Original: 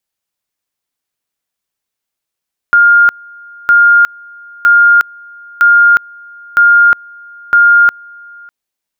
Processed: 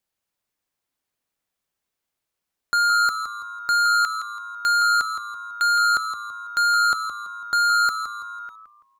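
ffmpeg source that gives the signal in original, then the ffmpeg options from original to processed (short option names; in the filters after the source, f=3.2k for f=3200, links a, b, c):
-f lavfi -i "aevalsrc='pow(10,(-3-28*gte(mod(t,0.96),0.36))/20)*sin(2*PI*1410*t)':d=5.76:s=44100"
-filter_complex "[0:a]highshelf=f=2.1k:g=-5,asoftclip=type=tanh:threshold=-18dB,asplit=2[a][b];[b]asplit=4[c][d][e][f];[c]adelay=166,afreqshift=-110,volume=-10dB[g];[d]adelay=332,afreqshift=-220,volume=-19.1dB[h];[e]adelay=498,afreqshift=-330,volume=-28.2dB[i];[f]adelay=664,afreqshift=-440,volume=-37.4dB[j];[g][h][i][j]amix=inputs=4:normalize=0[k];[a][k]amix=inputs=2:normalize=0"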